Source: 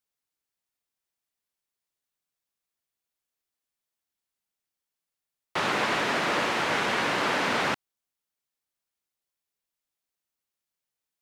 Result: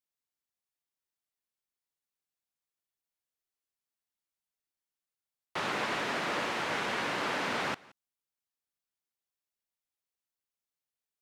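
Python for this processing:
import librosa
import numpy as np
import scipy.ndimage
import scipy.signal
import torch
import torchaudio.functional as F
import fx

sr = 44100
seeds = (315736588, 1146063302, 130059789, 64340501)

y = x + 10.0 ** (-23.5 / 20.0) * np.pad(x, (int(173 * sr / 1000.0), 0))[:len(x)]
y = y * librosa.db_to_amplitude(-6.5)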